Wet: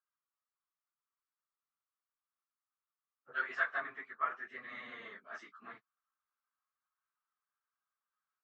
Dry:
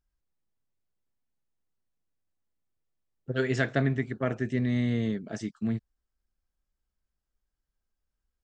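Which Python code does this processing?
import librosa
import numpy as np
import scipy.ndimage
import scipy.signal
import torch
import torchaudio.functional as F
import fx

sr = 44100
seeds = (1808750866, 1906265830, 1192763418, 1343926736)

y = fx.phase_scramble(x, sr, seeds[0], window_ms=50)
y = fx.rider(y, sr, range_db=10, speed_s=2.0)
y = fx.ladder_bandpass(y, sr, hz=1300.0, resonance_pct=70)
y = F.gain(torch.from_numpy(y), 7.0).numpy()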